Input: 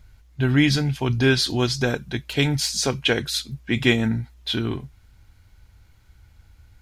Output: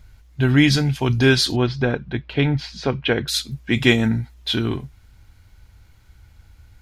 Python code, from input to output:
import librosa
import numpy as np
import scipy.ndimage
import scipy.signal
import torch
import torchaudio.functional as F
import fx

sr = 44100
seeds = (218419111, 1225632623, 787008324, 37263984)

y = fx.air_absorb(x, sr, metres=330.0, at=(1.56, 3.28))
y = F.gain(torch.from_numpy(y), 3.0).numpy()